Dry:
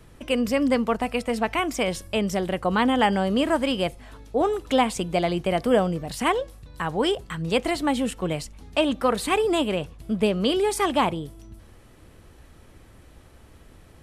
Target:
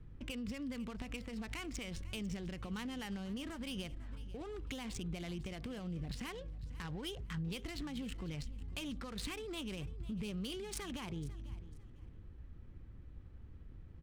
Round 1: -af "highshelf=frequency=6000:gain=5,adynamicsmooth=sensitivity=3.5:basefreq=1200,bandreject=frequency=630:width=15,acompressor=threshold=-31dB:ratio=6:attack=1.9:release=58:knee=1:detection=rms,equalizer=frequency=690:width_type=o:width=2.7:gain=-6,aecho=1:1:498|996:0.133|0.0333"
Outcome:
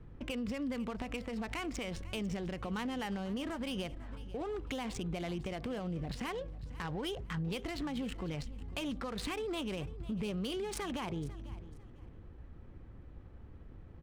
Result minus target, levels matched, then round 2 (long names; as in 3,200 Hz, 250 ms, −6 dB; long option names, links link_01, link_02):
500 Hz band +3.5 dB
-af "highshelf=frequency=6000:gain=5,adynamicsmooth=sensitivity=3.5:basefreq=1200,bandreject=frequency=630:width=15,acompressor=threshold=-31dB:ratio=6:attack=1.9:release=58:knee=1:detection=rms,equalizer=frequency=690:width_type=o:width=2.7:gain=-16,aecho=1:1:498|996:0.133|0.0333"